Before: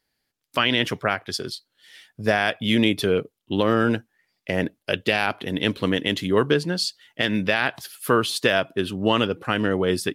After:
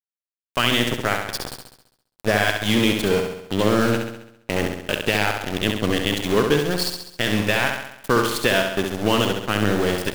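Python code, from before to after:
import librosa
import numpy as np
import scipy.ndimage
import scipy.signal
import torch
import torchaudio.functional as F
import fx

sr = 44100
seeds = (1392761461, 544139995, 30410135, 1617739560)

y = fx.cheby_harmonics(x, sr, harmonics=(5, 8), levels_db=(-43, -22), full_scale_db=-6.0)
y = np.where(np.abs(y) >= 10.0 ** (-24.0 / 20.0), y, 0.0)
y = fx.room_flutter(y, sr, wall_m=11.5, rt60_s=0.77)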